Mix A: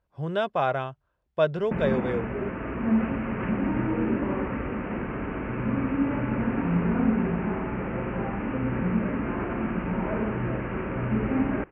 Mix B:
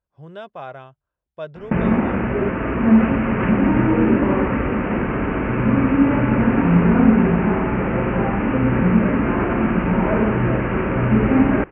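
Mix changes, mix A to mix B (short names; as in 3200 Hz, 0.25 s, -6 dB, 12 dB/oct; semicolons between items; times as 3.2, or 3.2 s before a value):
speech -9.0 dB; background +10.0 dB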